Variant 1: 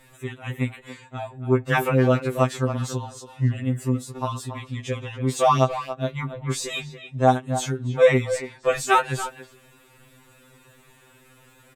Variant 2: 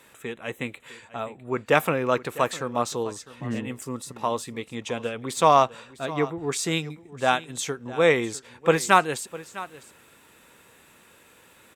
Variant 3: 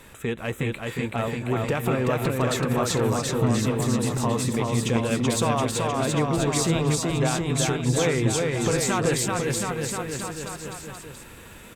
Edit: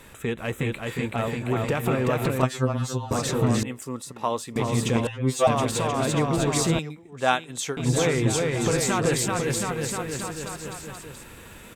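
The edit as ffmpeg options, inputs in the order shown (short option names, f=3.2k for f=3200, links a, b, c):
-filter_complex "[0:a]asplit=2[a][b];[1:a]asplit=2[c][d];[2:a]asplit=5[e][f][g][h][i];[e]atrim=end=2.432[j];[a]atrim=start=2.428:end=3.112[k];[f]atrim=start=3.108:end=3.632[l];[c]atrim=start=3.628:end=4.562[m];[g]atrim=start=4.558:end=5.072[n];[b]atrim=start=5.068:end=5.472[o];[h]atrim=start=5.468:end=6.792[p];[d]atrim=start=6.788:end=7.772[q];[i]atrim=start=7.768[r];[j][k]acrossfade=d=0.004:c1=hsin:c2=hsin[s];[s][l]acrossfade=d=0.004:c1=hsin:c2=hsin[t];[t][m]acrossfade=d=0.004:c1=hsin:c2=hsin[u];[u][n]acrossfade=d=0.004:c1=hsin:c2=hsin[v];[v][o]acrossfade=d=0.004:c1=hsin:c2=hsin[w];[w][p]acrossfade=d=0.004:c1=hsin:c2=hsin[x];[x][q]acrossfade=d=0.004:c1=hsin:c2=hsin[y];[y][r]acrossfade=d=0.004:c1=hsin:c2=hsin"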